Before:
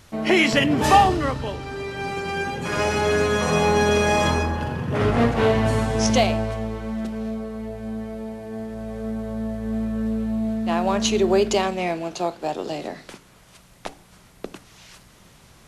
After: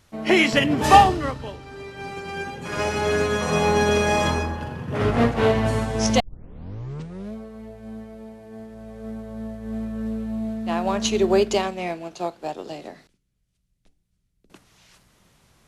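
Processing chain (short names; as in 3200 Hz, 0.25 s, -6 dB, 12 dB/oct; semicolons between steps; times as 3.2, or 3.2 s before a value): 6.2 tape start 1.14 s; 13.07–14.5 passive tone stack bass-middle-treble 10-0-1; upward expander 1.5:1, over -33 dBFS; gain +3 dB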